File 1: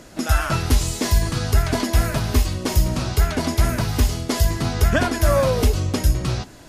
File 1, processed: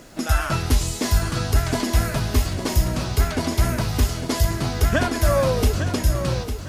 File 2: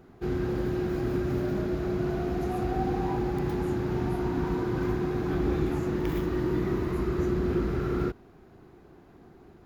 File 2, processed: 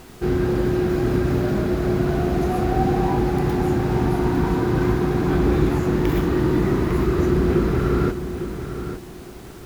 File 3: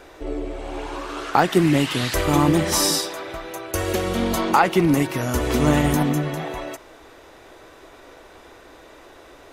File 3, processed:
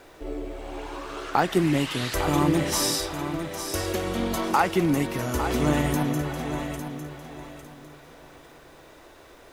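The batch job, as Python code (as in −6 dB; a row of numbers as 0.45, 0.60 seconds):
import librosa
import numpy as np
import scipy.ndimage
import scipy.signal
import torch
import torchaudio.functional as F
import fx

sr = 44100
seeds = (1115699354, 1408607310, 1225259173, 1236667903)

p1 = fx.dmg_noise_colour(x, sr, seeds[0], colour='pink', level_db=-55.0)
p2 = p1 + fx.echo_feedback(p1, sr, ms=853, feedback_pct=25, wet_db=-9.5, dry=0)
y = librosa.util.normalize(p2) * 10.0 ** (-6 / 20.0)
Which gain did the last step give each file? −1.5, +8.5, −5.0 decibels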